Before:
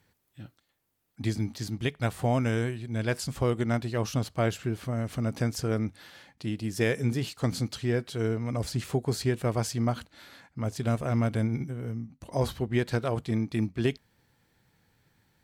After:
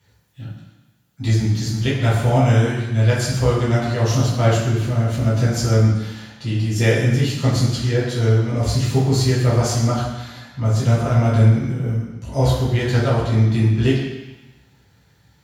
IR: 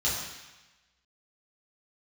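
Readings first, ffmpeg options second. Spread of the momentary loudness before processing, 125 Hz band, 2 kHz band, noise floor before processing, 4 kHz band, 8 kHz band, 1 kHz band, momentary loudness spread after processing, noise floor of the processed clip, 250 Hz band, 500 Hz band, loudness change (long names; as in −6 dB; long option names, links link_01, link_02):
8 LU, +14.0 dB, +9.0 dB, −74 dBFS, +11.0 dB, +11.0 dB, +9.5 dB, 9 LU, −57 dBFS, +8.5 dB, +8.5 dB, +11.5 dB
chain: -filter_complex "[1:a]atrim=start_sample=2205[link_01];[0:a][link_01]afir=irnorm=-1:irlink=0"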